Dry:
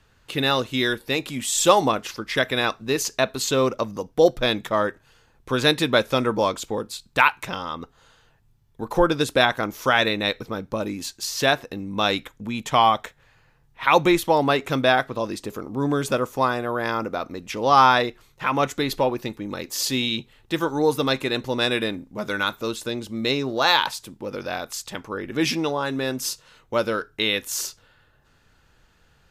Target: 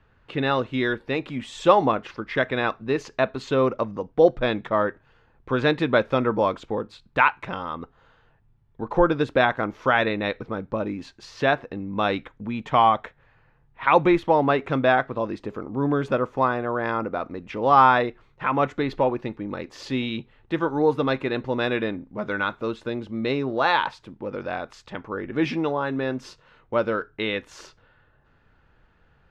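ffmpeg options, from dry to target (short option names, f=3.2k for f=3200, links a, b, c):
-af "lowpass=2.1k"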